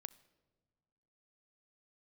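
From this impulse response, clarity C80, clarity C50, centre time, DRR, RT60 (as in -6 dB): 20.5 dB, 19.0 dB, 3 ms, 15.5 dB, not exponential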